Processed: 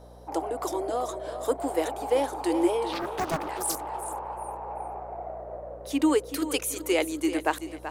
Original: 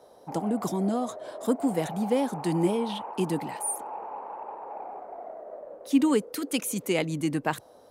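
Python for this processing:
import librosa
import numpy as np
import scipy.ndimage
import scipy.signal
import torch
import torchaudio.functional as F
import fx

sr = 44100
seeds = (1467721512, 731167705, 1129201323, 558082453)

p1 = scipy.signal.sosfilt(scipy.signal.ellip(4, 1.0, 40, 310.0, 'highpass', fs=sr, output='sos'), x)
p2 = fx.add_hum(p1, sr, base_hz=60, snr_db=21)
p3 = p2 + fx.echo_feedback(p2, sr, ms=382, feedback_pct=27, wet_db=-11.0, dry=0)
p4 = fx.doppler_dist(p3, sr, depth_ms=1.0, at=(2.92, 4.31))
y = p4 * librosa.db_to_amplitude(2.5)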